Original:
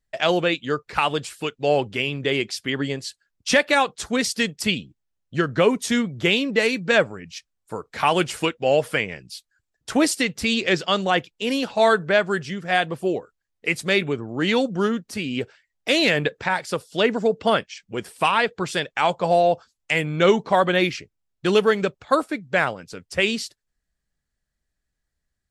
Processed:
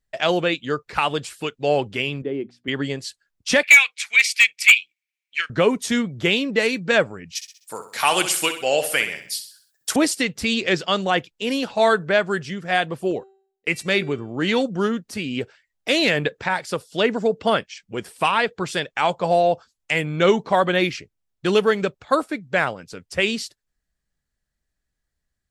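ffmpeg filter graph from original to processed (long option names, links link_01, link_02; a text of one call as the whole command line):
ffmpeg -i in.wav -filter_complex "[0:a]asettb=1/sr,asplit=3[link_01][link_02][link_03];[link_01]atrim=end=2.224[link_04];[link_02]atrim=start=2.22:end=2.68,asetpts=PTS-STARTPTS,afade=type=in:duration=0.004:curve=qsin,afade=type=out:start_time=0.456:duration=0.004:curve=qsin,bandpass=frequency=280:width_type=q:width=1.2,bandreject=frequency=60:width_type=h:width=6,bandreject=frequency=120:width_type=h:width=6,bandreject=frequency=180:width_type=h:width=6,bandreject=frequency=240:width_type=h:width=6,bandreject=frequency=300:width_type=h:width=6[link_05];[link_03]atrim=start=2.676[link_06];[link_04][link_05]acrossfade=duration=0.004:curve1=hsin:curve2=qsin[link_07];[link_07][link_06]acrossfade=duration=0.004:curve1=qsin:curve2=hsin,asettb=1/sr,asplit=3[link_08][link_09][link_10];[link_08]atrim=end=3.634[link_11];[link_09]atrim=start=3.63:end=5.5,asetpts=PTS-STARTPTS,afade=type=in:duration=0.004:curve=qsin,afade=type=out:start_time=1.866:duration=0.004:curve=qsin,highpass=frequency=2300:width_type=q:width=12,volume=5.5dB,asoftclip=hard,volume=-5.5dB[link_12];[link_10]atrim=start=5.496[link_13];[link_11][link_12]acrossfade=duration=0.004:curve1=hsin:curve2=qsin[link_14];[link_14][link_13]acrossfade=duration=0.004:curve1=qsin:curve2=hsin,asettb=1/sr,asplit=3[link_15][link_16][link_17];[link_15]atrim=end=7.354[link_18];[link_16]atrim=start=7.35:end=9.96,asetpts=PTS-STARTPTS,afade=type=in:duration=0.004:curve=qsin,afade=type=out:start_time=2.606:duration=0.004:curve=qsin,highpass=58,aemphasis=mode=production:type=riaa,aecho=1:1:64|128|192|256|320:0.316|0.136|0.0585|0.0251|0.0108,atrim=end_sample=115101[link_19];[link_17]atrim=start=9.956[link_20];[link_18][link_19]acrossfade=duration=0.004:curve1=hsin:curve2=qsin[link_21];[link_21][link_20]acrossfade=duration=0.004:curve1=qsin:curve2=hsin,asettb=1/sr,asplit=3[link_22][link_23][link_24];[link_22]atrim=end=13.114[link_25];[link_23]atrim=start=13.11:end=14.63,asetpts=PTS-STARTPTS,afade=type=in:duration=0.004:curve=qsin,afade=type=out:start_time=1.516:duration=0.004:curve=qsin,agate=range=-23dB:threshold=-38dB:ratio=16:release=100:detection=peak,bandreject=frequency=387.2:width_type=h:width=4,bandreject=frequency=774.4:width_type=h:width=4,bandreject=frequency=1161.6:width_type=h:width=4,bandreject=frequency=1548.8:width_type=h:width=4,bandreject=frequency=1936:width_type=h:width=4,bandreject=frequency=2323.2:width_type=h:width=4,bandreject=frequency=2710.4:width_type=h:width=4,bandreject=frequency=3097.6:width_type=h:width=4,bandreject=frequency=3484.8:width_type=h:width=4,bandreject=frequency=3872:width_type=h:width=4,bandreject=frequency=4259.2:width_type=h:width=4,bandreject=frequency=4646.4:width_type=h:width=4,bandreject=frequency=5033.6:width_type=h:width=4,bandreject=frequency=5420.8:width_type=h:width=4,bandreject=frequency=5808:width_type=h:width=4,bandreject=frequency=6195.2:width_type=h:width=4,bandreject=frequency=6582.4:width_type=h:width=4,bandreject=frequency=6969.6:width_type=h:width=4,bandreject=frequency=7356.8:width_type=h:width=4,bandreject=frequency=7744:width_type=h:width=4,bandreject=frequency=8131.2:width_type=h:width=4,bandreject=frequency=8518.4:width_type=h:width=4,bandreject=frequency=8905.6:width_type=h:width=4,bandreject=frequency=9292.8:width_type=h:width=4,bandreject=frequency=9680:width_type=h:width=4,bandreject=frequency=10067.2:width_type=h:width=4,bandreject=frequency=10454.4:width_type=h:width=4,bandreject=frequency=10841.6:width_type=h:width=4,bandreject=frequency=11228.8:width_type=h:width=4,bandreject=frequency=11616:width_type=h:width=4,bandreject=frequency=12003.2:width_type=h:width=4,bandreject=frequency=12390.4:width_type=h:width=4,bandreject=frequency=12777.6:width_type=h:width=4,bandreject=frequency=13164.8:width_type=h:width=4,bandreject=frequency=13552:width_type=h:width=4,bandreject=frequency=13939.2:width_type=h:width=4,bandreject=frequency=14326.4:width_type=h:width=4[link_26];[link_24]atrim=start=14.626[link_27];[link_25][link_26]acrossfade=duration=0.004:curve1=hsin:curve2=qsin[link_28];[link_28][link_27]acrossfade=duration=0.004:curve1=qsin:curve2=hsin" out.wav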